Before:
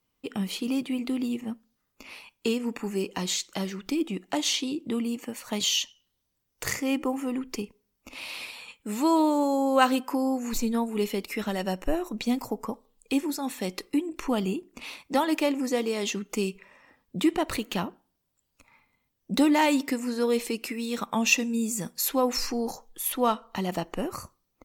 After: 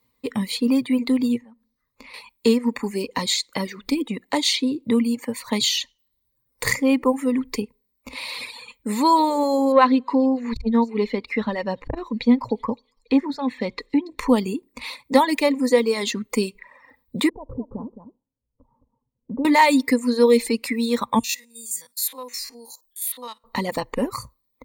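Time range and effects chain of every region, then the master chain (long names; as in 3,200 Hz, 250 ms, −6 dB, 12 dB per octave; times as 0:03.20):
0:01.38–0:02.14: high-shelf EQ 7,700 Hz −9 dB + downward compressor 3 to 1, threshold −49 dBFS
0:09.72–0:14.19: high-frequency loss of the air 220 metres + delay with a high-pass on its return 282 ms, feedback 33%, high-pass 4,100 Hz, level −11 dB + saturating transformer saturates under 380 Hz
0:17.29–0:19.45: Gaussian smoothing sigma 12 samples + downward compressor 2 to 1, threshold −37 dBFS + single-tap delay 215 ms −8 dB
0:21.19–0:23.44: spectrum averaged block by block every 50 ms + first-order pre-emphasis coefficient 0.97
whole clip: notch filter 7,900 Hz, Q 6.8; reverb reduction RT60 0.86 s; EQ curve with evenly spaced ripples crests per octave 0.98, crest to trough 11 dB; level +6 dB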